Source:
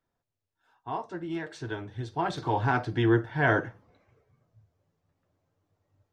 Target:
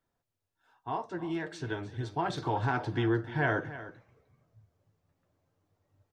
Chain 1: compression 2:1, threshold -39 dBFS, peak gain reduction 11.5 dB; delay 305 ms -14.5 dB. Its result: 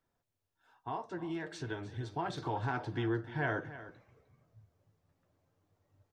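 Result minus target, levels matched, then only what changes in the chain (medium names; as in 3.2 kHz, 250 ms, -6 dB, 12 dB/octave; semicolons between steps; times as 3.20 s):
compression: peak gain reduction +5.5 dB
change: compression 2:1, threshold -28.5 dBFS, peak gain reduction 6.5 dB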